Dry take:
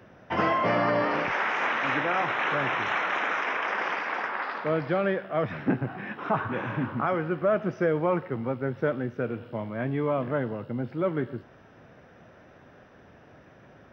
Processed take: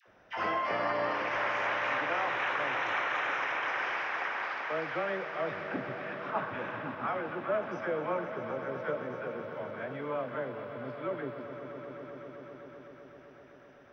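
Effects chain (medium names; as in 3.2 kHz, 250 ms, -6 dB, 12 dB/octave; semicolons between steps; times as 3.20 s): peaking EQ 150 Hz -11.5 dB 2.4 oct; phase dispersion lows, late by 70 ms, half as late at 760 Hz; on a send: echo with a slow build-up 128 ms, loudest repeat 5, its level -13.5 dB; on the sum: trim -5 dB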